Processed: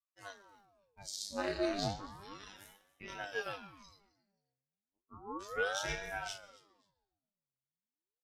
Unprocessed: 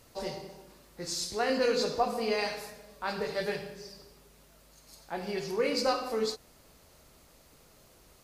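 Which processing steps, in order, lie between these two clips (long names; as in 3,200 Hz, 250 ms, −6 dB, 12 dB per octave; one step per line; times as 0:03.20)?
noise gate −51 dBFS, range −27 dB
noise reduction from a noise print of the clip's start 16 dB
0:01.95–0:03.10: downward compressor 12 to 1, threshold −38 dBFS, peak gain reduction 16.5 dB
0:03.98–0:05.42: Butterworth low-pass 660 Hz 48 dB per octave
pitch vibrato 0.45 Hz 72 cents
phases set to zero 99.3 Hz
multi-voice chorus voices 6, 0.44 Hz, delay 21 ms, depth 3 ms
repeating echo 265 ms, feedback 22%, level −21 dB
comb and all-pass reverb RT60 1.3 s, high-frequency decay 0.8×, pre-delay 70 ms, DRR 19 dB
ring modulator whose carrier an LFO sweeps 650 Hz, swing 80%, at 0.33 Hz
level +1 dB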